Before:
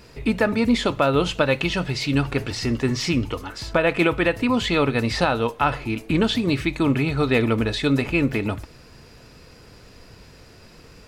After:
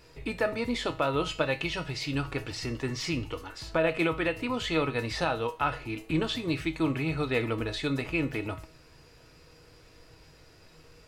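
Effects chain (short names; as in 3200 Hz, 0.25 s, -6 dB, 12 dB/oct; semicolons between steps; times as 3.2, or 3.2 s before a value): bell 200 Hz -10.5 dB 0.38 oct; resonator 160 Hz, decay 0.31 s, harmonics all, mix 70%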